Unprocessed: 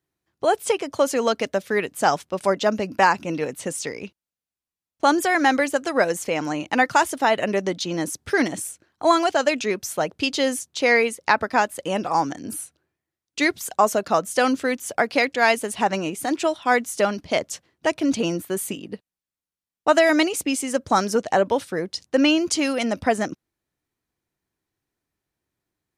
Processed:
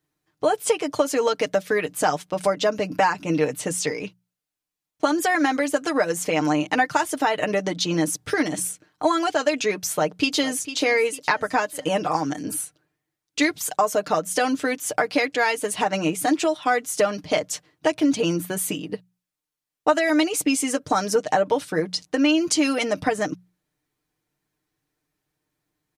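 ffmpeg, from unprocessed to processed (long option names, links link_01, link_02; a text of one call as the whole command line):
ffmpeg -i in.wav -filter_complex "[0:a]asplit=2[link_01][link_02];[link_02]afade=type=in:start_time=9.87:duration=0.01,afade=type=out:start_time=10.72:duration=0.01,aecho=0:1:450|900|1350|1800:0.188365|0.0847642|0.0381439|0.0171648[link_03];[link_01][link_03]amix=inputs=2:normalize=0,acompressor=threshold=-22dB:ratio=4,bandreject=frequency=60:width_type=h:width=6,bandreject=frequency=120:width_type=h:width=6,bandreject=frequency=180:width_type=h:width=6,aecho=1:1:6.6:0.67,volume=2.5dB" out.wav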